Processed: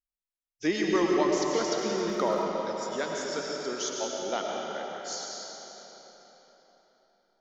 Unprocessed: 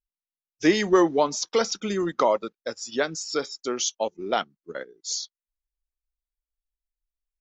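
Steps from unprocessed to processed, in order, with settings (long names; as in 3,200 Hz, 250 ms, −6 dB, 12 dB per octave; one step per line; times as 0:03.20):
comb and all-pass reverb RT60 4.3 s, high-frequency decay 0.8×, pre-delay 65 ms, DRR −2 dB
0:01.76–0:02.42: surface crackle 40 per second → 140 per second −34 dBFS
level −8 dB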